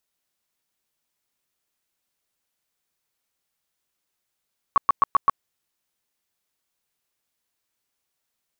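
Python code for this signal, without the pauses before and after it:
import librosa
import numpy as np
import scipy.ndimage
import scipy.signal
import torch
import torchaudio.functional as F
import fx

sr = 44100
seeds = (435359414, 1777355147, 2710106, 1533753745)

y = fx.tone_burst(sr, hz=1120.0, cycles=19, every_s=0.13, bursts=5, level_db=-12.0)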